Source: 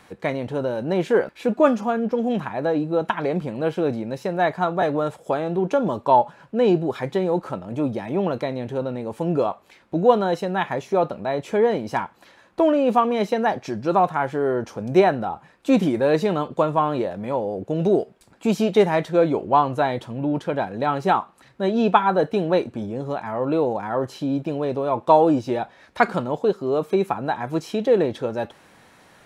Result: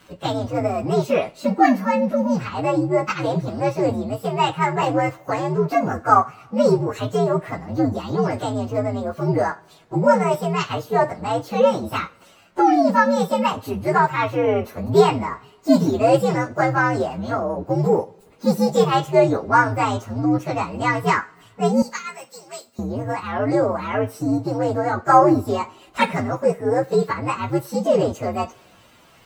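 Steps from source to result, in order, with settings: inharmonic rescaling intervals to 125%; 21.82–22.79 differentiator; two-slope reverb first 0.3 s, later 1.9 s, from -22 dB, DRR 13 dB; gain +4.5 dB

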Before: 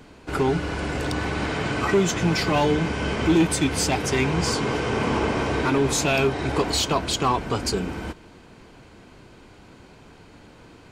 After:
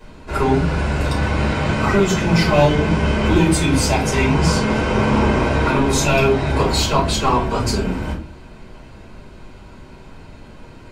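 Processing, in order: shoebox room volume 170 m³, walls furnished, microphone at 5.3 m; gain -5.5 dB

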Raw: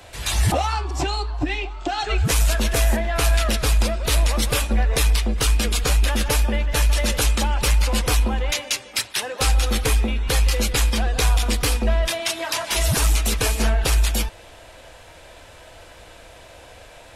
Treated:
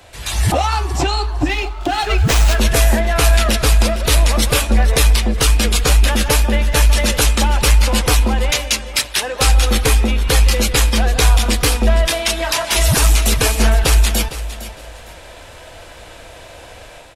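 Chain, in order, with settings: AGC gain up to 6.5 dB; feedback echo 0.458 s, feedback 24%, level -14 dB; 1.48–2.59 running maximum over 3 samples

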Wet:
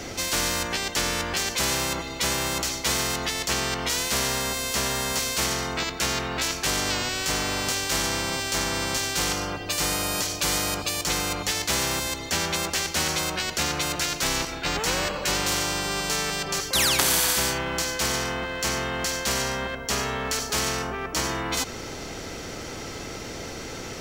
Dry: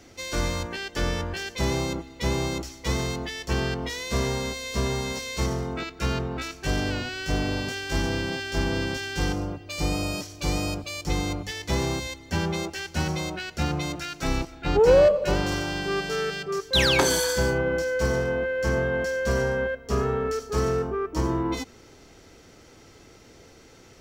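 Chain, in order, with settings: spectral compressor 4:1; gain +3.5 dB

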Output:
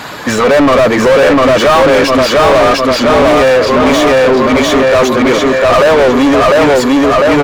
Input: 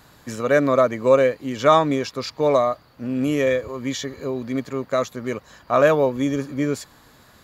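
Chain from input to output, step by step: bin magnitudes rounded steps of 15 dB; on a send: feedback echo 0.7 s, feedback 41%, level -3 dB; on the sum: overdrive pedal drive 39 dB, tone 1900 Hz, clips at -1 dBFS; gain +1 dB

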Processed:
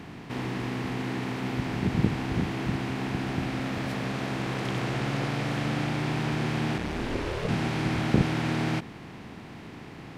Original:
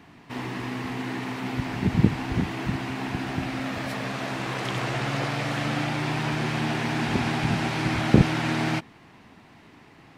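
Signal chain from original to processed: per-bin compression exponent 0.6; 6.77–7.47 ring modulator 53 Hz -> 320 Hz; gain -7 dB

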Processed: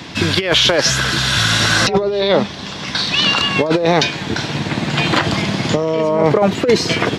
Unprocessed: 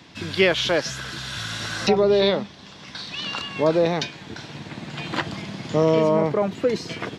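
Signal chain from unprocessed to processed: dynamic EQ 190 Hz, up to -4 dB, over -34 dBFS, Q 1.1; negative-ratio compressor -23 dBFS, ratio -0.5; maximiser +14.5 dB; gain -2 dB

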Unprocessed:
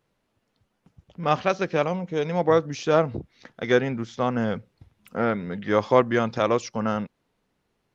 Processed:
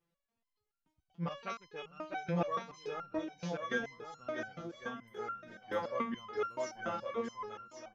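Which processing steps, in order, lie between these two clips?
reverb removal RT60 0.73 s; bouncing-ball echo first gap 0.65 s, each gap 0.7×, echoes 5; stepped resonator 7 Hz 170–1400 Hz; gain +1 dB

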